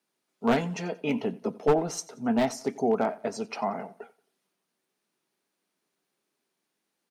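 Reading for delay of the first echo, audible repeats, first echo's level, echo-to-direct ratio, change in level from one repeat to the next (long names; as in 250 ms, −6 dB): 90 ms, 2, −21.0 dB, −20.5 dB, −8.5 dB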